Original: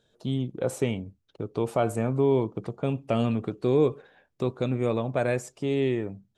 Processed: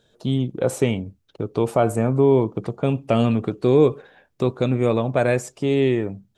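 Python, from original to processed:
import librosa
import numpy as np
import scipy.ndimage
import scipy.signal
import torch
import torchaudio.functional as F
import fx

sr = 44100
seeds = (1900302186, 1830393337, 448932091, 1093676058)

y = fx.peak_eq(x, sr, hz=3500.0, db=-4.5, octaves=1.6, at=(1.71, 2.47))
y = y * 10.0 ** (6.5 / 20.0)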